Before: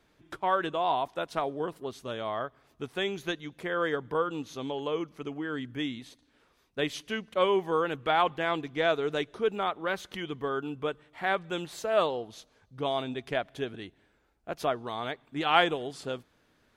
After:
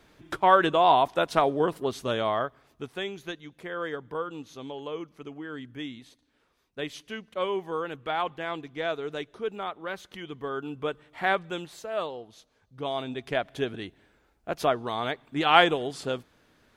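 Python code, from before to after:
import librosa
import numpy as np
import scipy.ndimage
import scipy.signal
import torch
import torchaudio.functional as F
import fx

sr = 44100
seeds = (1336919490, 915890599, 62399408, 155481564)

y = fx.gain(x, sr, db=fx.line((2.18, 8.0), (3.15, -4.0), (10.17, -4.0), (11.26, 4.0), (11.86, -5.5), (12.36, -5.5), (13.63, 4.5)))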